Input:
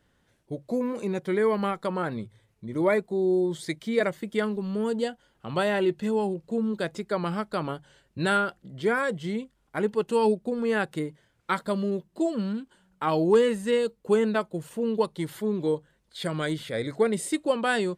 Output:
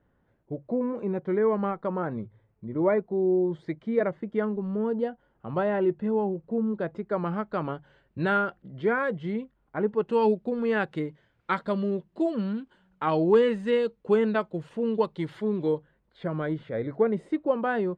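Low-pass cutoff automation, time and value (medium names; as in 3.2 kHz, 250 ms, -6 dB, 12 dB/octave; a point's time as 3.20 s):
6.93 s 1.3 kHz
7.66 s 2.1 kHz
9.38 s 2.1 kHz
9.87 s 1.3 kHz
10.22 s 3.1 kHz
15.66 s 3.1 kHz
16.19 s 1.3 kHz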